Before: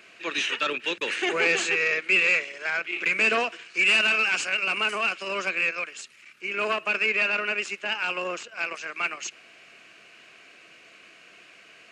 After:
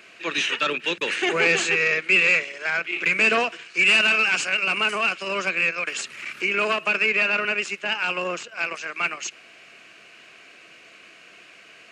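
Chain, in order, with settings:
dynamic equaliser 160 Hz, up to +7 dB, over −57 dBFS, Q 2.7
0:05.87–0:07.45: multiband upward and downward compressor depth 70%
level +3 dB

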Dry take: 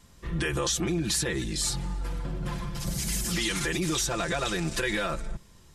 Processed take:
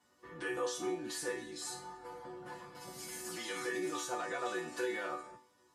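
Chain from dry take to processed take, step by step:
high-pass filter 94 Hz 24 dB per octave
flat-topped bell 760 Hz +9.5 dB 2.5 octaves
resonators tuned to a chord B3 minor, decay 0.4 s
level +5.5 dB

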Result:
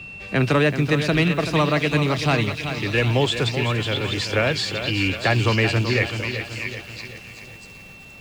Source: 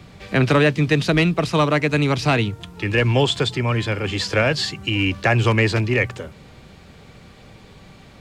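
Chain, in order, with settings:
steady tone 2,700 Hz −33 dBFS
echo through a band-pass that steps 645 ms, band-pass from 3,000 Hz, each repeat 0.7 octaves, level −3 dB
feedback echo at a low word length 381 ms, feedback 55%, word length 7 bits, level −9 dB
level −2.5 dB

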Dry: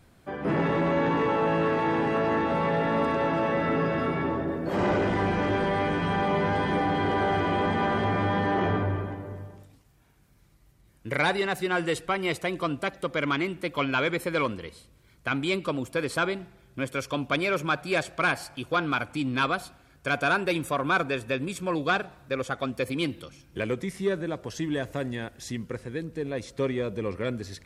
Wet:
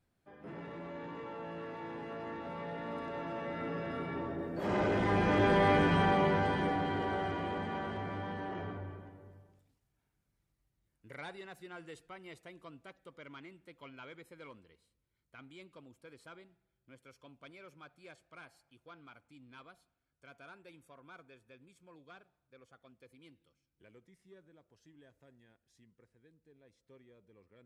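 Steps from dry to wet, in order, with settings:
source passing by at 0:05.72, 7 m/s, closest 3.4 metres
notch filter 1,100 Hz, Q 27

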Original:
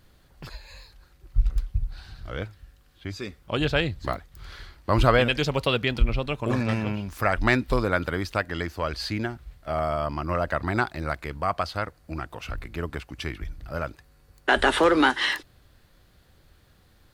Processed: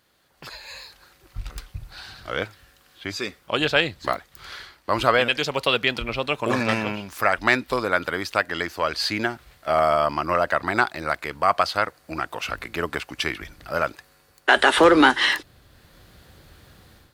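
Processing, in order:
high-pass filter 550 Hz 6 dB per octave, from 0:14.78 69 Hz
automatic gain control gain up to 11 dB
level −1 dB

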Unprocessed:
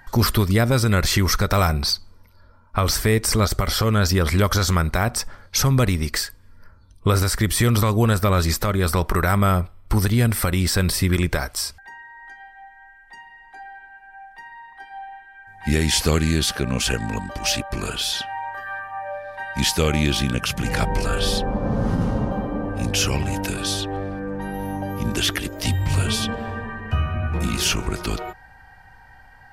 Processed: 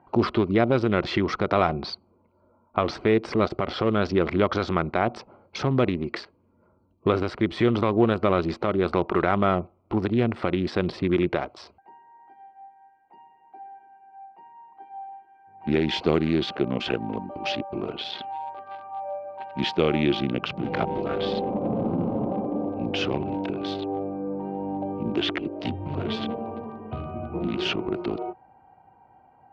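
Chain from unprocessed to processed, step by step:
adaptive Wiener filter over 25 samples
loudspeaker in its box 190–3,400 Hz, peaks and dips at 350 Hz +7 dB, 700 Hz +4 dB, 1,700 Hz −5 dB
level −1 dB

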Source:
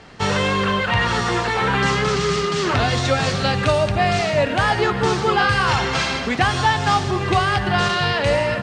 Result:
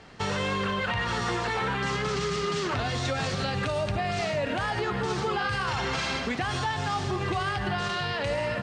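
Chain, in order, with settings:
brickwall limiter −14 dBFS, peak gain reduction 8 dB
level −6 dB

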